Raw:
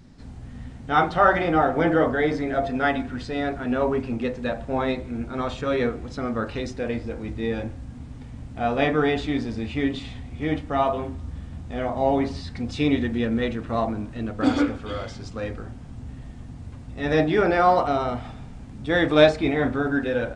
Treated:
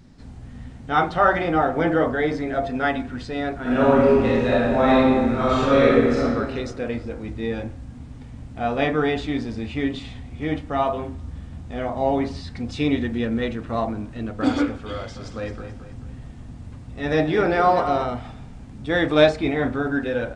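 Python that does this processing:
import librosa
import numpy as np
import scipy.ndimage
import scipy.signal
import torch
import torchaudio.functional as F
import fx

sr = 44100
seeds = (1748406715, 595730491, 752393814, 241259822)

y = fx.reverb_throw(x, sr, start_s=3.61, length_s=2.6, rt60_s=1.8, drr_db=-7.5)
y = fx.echo_feedback(y, sr, ms=218, feedback_pct=42, wet_db=-10.5, at=(15.15, 18.05), fade=0.02)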